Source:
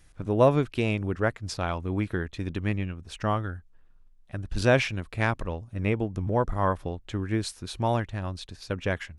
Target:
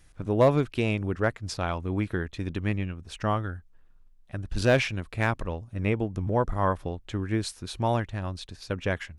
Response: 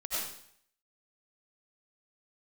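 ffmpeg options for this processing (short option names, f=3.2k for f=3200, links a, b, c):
-af "asoftclip=type=hard:threshold=-12.5dB"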